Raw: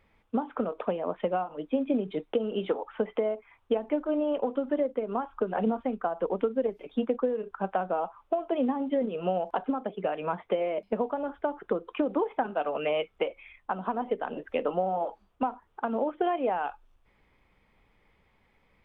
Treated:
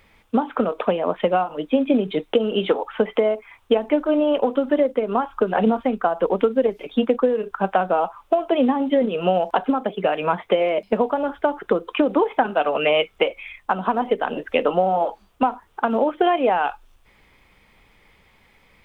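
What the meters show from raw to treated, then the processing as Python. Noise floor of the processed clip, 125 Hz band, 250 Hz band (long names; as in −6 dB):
−57 dBFS, +8.5 dB, +8.5 dB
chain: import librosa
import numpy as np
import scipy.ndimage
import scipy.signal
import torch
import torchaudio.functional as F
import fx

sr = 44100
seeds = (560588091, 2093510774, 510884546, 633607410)

y = fx.high_shelf(x, sr, hz=2400.0, db=10.0)
y = y * librosa.db_to_amplitude(8.5)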